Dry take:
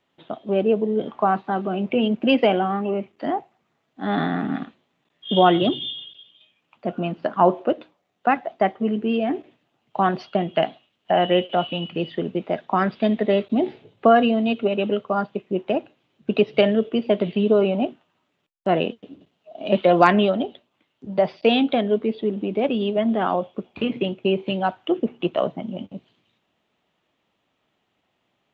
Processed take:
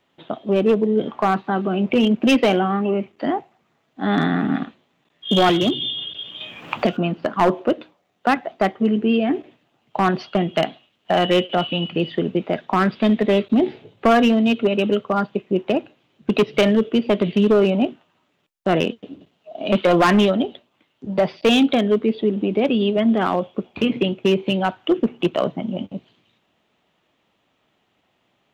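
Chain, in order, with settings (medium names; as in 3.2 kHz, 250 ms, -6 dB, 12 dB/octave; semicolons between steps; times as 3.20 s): dynamic bell 700 Hz, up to -5 dB, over -31 dBFS, Q 1.3; hard clipper -15 dBFS, distortion -15 dB; 5.49–6.97 s: three bands compressed up and down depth 100%; trim +5 dB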